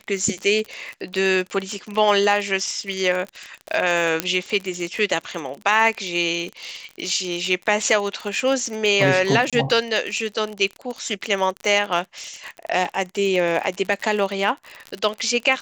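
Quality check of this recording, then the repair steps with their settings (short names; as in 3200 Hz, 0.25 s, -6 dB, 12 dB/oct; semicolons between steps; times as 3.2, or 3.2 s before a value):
crackle 44/s -26 dBFS
4.2 pop -3 dBFS
9.5–9.53 gap 26 ms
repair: de-click; interpolate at 9.5, 26 ms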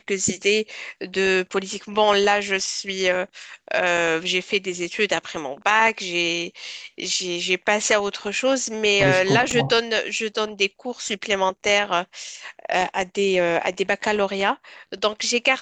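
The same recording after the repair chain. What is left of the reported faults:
none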